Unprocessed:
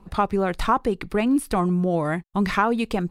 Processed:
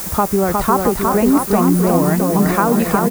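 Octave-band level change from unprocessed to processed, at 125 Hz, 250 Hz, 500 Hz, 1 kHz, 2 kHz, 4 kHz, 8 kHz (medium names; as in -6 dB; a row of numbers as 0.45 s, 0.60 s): +8.5 dB, +8.5 dB, +8.0 dB, +6.5 dB, +3.5 dB, +4.0 dB, +16.0 dB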